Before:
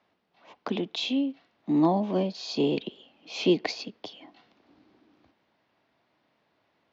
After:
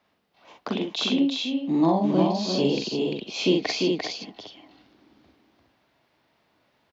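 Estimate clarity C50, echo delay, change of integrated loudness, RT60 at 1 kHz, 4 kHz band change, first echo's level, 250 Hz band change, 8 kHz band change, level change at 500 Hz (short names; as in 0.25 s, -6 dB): none, 43 ms, +3.5 dB, none, +6.0 dB, -4.0 dB, +4.0 dB, n/a, +3.5 dB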